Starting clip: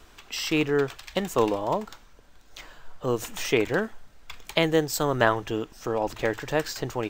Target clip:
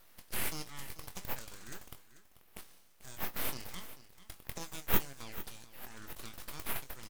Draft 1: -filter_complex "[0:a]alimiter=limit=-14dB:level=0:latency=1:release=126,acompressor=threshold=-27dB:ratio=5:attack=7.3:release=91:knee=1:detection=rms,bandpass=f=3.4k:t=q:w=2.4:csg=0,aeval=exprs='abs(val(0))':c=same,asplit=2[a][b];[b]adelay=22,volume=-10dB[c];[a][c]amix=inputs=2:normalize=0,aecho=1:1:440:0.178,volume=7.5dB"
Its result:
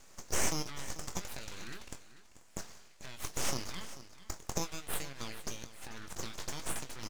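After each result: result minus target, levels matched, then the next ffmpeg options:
compressor: peak gain reduction +8 dB; 8000 Hz band +7.0 dB
-filter_complex "[0:a]alimiter=limit=-14dB:level=0:latency=1:release=126,bandpass=f=3.4k:t=q:w=2.4:csg=0,aeval=exprs='abs(val(0))':c=same,asplit=2[a][b];[b]adelay=22,volume=-10dB[c];[a][c]amix=inputs=2:normalize=0,aecho=1:1:440:0.178,volume=7.5dB"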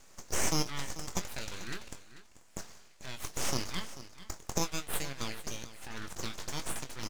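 8000 Hz band +6.0 dB
-filter_complex "[0:a]alimiter=limit=-14dB:level=0:latency=1:release=126,bandpass=f=7.8k:t=q:w=2.4:csg=0,aeval=exprs='abs(val(0))':c=same,asplit=2[a][b];[b]adelay=22,volume=-10dB[c];[a][c]amix=inputs=2:normalize=0,aecho=1:1:440:0.178,volume=7.5dB"

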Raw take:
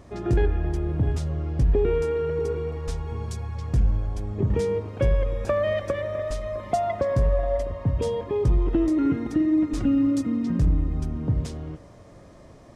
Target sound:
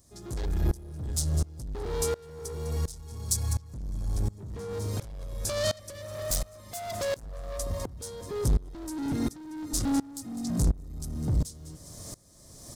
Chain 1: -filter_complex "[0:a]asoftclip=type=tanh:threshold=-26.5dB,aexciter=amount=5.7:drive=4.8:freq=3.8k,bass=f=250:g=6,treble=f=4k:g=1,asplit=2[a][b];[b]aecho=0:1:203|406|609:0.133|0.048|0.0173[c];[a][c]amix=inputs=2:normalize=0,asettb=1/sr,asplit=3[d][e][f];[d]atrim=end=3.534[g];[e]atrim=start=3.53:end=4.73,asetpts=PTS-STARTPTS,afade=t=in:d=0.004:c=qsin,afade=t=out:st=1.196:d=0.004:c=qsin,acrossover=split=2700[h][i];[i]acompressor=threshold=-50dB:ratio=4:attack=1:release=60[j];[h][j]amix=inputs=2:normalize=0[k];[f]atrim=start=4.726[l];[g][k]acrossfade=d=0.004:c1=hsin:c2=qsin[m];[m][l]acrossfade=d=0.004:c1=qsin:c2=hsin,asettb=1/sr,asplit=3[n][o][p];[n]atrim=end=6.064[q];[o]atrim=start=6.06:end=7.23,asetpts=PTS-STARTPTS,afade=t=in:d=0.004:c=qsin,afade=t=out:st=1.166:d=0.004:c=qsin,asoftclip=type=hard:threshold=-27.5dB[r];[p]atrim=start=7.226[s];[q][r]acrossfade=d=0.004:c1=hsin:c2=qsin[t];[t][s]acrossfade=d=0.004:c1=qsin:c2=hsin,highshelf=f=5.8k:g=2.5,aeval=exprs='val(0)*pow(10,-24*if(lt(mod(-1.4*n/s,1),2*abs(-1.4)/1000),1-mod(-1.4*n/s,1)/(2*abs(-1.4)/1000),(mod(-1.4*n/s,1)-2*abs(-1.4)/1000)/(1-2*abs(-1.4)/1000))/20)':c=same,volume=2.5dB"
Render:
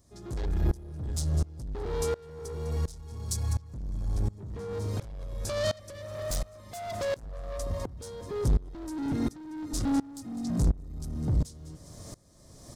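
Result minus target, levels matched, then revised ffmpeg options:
8000 Hz band -6.0 dB
-filter_complex "[0:a]asoftclip=type=tanh:threshold=-26.5dB,aexciter=amount=5.7:drive=4.8:freq=3.8k,bass=f=250:g=6,treble=f=4k:g=1,asplit=2[a][b];[b]aecho=0:1:203|406|609:0.133|0.048|0.0173[c];[a][c]amix=inputs=2:normalize=0,asettb=1/sr,asplit=3[d][e][f];[d]atrim=end=3.534[g];[e]atrim=start=3.53:end=4.73,asetpts=PTS-STARTPTS,afade=t=in:d=0.004:c=qsin,afade=t=out:st=1.196:d=0.004:c=qsin,acrossover=split=2700[h][i];[i]acompressor=threshold=-50dB:ratio=4:attack=1:release=60[j];[h][j]amix=inputs=2:normalize=0[k];[f]atrim=start=4.726[l];[g][k]acrossfade=d=0.004:c1=hsin:c2=qsin[m];[m][l]acrossfade=d=0.004:c1=qsin:c2=hsin,asettb=1/sr,asplit=3[n][o][p];[n]atrim=end=6.064[q];[o]atrim=start=6.06:end=7.23,asetpts=PTS-STARTPTS,afade=t=in:d=0.004:c=qsin,afade=t=out:st=1.166:d=0.004:c=qsin,asoftclip=type=hard:threshold=-27.5dB[r];[p]atrim=start=7.226[s];[q][r]acrossfade=d=0.004:c1=hsin:c2=qsin[t];[t][s]acrossfade=d=0.004:c1=qsin:c2=hsin,highshelf=f=5.8k:g=13,aeval=exprs='val(0)*pow(10,-24*if(lt(mod(-1.4*n/s,1),2*abs(-1.4)/1000),1-mod(-1.4*n/s,1)/(2*abs(-1.4)/1000),(mod(-1.4*n/s,1)-2*abs(-1.4)/1000)/(1-2*abs(-1.4)/1000))/20)':c=same,volume=2.5dB"

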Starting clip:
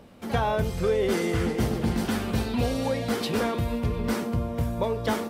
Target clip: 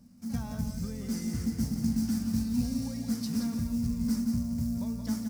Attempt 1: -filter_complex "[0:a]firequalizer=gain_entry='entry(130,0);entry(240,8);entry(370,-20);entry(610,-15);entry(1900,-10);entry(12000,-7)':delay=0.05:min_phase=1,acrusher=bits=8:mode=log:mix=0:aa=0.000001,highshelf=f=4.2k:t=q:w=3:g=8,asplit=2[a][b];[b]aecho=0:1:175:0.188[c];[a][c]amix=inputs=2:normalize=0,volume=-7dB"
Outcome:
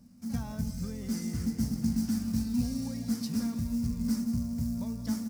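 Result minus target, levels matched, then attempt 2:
echo-to-direct -7.5 dB
-filter_complex "[0:a]firequalizer=gain_entry='entry(130,0);entry(240,8);entry(370,-20);entry(610,-15);entry(1900,-10);entry(12000,-7)':delay=0.05:min_phase=1,acrusher=bits=8:mode=log:mix=0:aa=0.000001,highshelf=f=4.2k:t=q:w=3:g=8,asplit=2[a][b];[b]aecho=0:1:175:0.447[c];[a][c]amix=inputs=2:normalize=0,volume=-7dB"

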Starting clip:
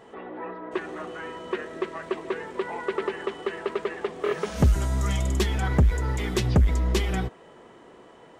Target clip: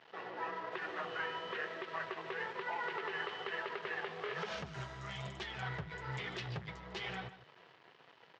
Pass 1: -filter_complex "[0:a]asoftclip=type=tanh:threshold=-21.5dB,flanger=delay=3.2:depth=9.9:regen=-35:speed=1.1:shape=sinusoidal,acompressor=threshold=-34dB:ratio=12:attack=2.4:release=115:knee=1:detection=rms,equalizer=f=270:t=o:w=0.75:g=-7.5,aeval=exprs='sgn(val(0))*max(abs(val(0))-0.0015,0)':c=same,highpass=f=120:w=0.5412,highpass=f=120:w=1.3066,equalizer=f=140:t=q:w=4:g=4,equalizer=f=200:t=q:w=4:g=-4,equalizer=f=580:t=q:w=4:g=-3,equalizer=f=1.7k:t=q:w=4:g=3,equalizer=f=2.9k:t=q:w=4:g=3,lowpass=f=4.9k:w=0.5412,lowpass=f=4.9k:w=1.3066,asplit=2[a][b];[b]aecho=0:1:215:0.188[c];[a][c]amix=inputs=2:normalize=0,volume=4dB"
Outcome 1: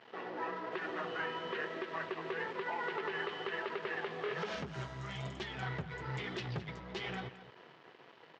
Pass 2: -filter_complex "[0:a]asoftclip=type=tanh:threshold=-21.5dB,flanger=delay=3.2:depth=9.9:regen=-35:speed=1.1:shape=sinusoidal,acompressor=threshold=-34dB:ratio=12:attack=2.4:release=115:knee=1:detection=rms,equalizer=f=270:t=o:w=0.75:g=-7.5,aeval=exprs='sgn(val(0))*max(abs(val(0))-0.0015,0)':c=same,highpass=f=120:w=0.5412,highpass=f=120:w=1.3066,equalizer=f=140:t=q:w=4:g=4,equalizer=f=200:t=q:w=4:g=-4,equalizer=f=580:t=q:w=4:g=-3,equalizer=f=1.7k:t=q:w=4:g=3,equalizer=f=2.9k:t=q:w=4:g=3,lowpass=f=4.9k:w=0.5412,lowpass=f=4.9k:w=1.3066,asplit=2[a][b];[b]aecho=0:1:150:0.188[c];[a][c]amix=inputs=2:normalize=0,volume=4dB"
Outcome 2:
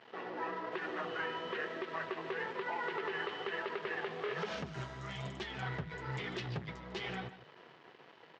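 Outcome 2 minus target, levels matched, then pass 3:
250 Hz band +4.0 dB
-filter_complex "[0:a]asoftclip=type=tanh:threshold=-21.5dB,flanger=delay=3.2:depth=9.9:regen=-35:speed=1.1:shape=sinusoidal,acompressor=threshold=-34dB:ratio=12:attack=2.4:release=115:knee=1:detection=rms,equalizer=f=270:t=o:w=0.75:g=-18.5,aeval=exprs='sgn(val(0))*max(abs(val(0))-0.0015,0)':c=same,highpass=f=120:w=0.5412,highpass=f=120:w=1.3066,equalizer=f=140:t=q:w=4:g=4,equalizer=f=200:t=q:w=4:g=-4,equalizer=f=580:t=q:w=4:g=-3,equalizer=f=1.7k:t=q:w=4:g=3,equalizer=f=2.9k:t=q:w=4:g=3,lowpass=f=4.9k:w=0.5412,lowpass=f=4.9k:w=1.3066,asplit=2[a][b];[b]aecho=0:1:150:0.188[c];[a][c]amix=inputs=2:normalize=0,volume=4dB"

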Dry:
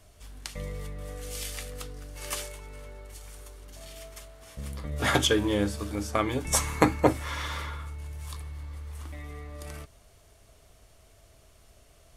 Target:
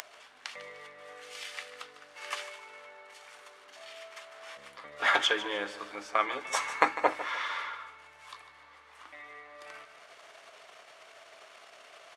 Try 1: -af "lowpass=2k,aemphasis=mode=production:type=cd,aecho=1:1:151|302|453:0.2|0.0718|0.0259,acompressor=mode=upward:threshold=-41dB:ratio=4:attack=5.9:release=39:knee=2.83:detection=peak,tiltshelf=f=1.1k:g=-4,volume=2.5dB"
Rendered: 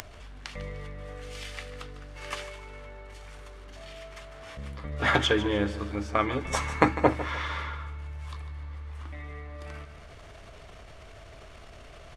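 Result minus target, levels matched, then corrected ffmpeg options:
500 Hz band +5.5 dB
-af "lowpass=2k,aemphasis=mode=production:type=cd,aecho=1:1:151|302|453:0.2|0.0718|0.0259,acompressor=mode=upward:threshold=-41dB:ratio=4:attack=5.9:release=39:knee=2.83:detection=peak,highpass=680,tiltshelf=f=1.1k:g=-4,volume=2.5dB"

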